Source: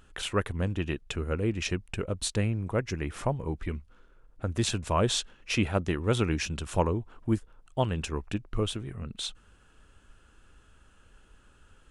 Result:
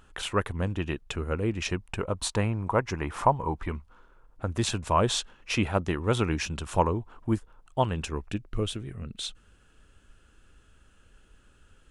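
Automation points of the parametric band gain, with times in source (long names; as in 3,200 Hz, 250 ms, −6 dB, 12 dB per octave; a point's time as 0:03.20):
parametric band 960 Hz 0.92 octaves
0:01.61 +5 dB
0:02.23 +14.5 dB
0:03.60 +14.5 dB
0:04.56 +5.5 dB
0:07.90 +5.5 dB
0:08.39 −4.5 dB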